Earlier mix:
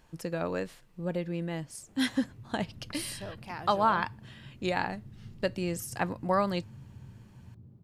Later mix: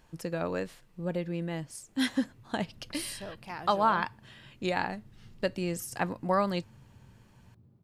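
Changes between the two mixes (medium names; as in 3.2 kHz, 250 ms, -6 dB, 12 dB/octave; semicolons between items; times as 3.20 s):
first sound -6.5 dB; second sound: add bass shelf 430 Hz -8.5 dB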